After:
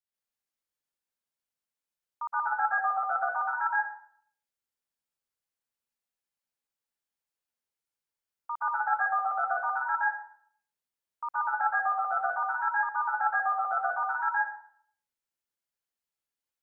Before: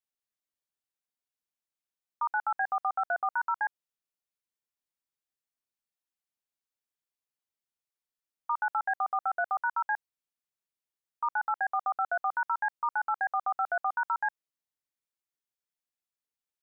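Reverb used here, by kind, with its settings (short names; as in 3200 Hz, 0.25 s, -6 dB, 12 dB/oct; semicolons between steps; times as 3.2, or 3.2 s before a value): plate-style reverb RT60 0.59 s, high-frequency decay 0.65×, pre-delay 0.11 s, DRR -5.5 dB; gain -5 dB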